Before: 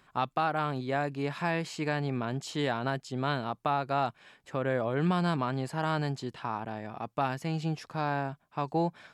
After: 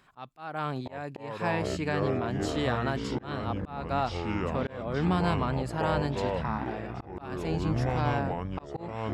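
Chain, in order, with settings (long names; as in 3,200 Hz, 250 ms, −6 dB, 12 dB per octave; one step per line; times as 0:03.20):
delay with pitch and tempo change per echo 637 ms, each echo −6 semitones, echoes 3
volume swells 307 ms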